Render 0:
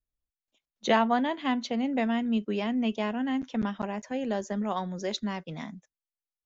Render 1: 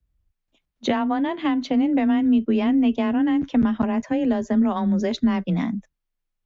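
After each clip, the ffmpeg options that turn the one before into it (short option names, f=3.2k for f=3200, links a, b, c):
-af "acompressor=threshold=-30dB:ratio=6,bass=f=250:g=11,treble=f=4k:g=-9,afreqshift=19,volume=8.5dB"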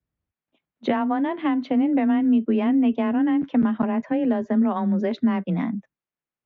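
-af "highpass=150,lowpass=2.4k"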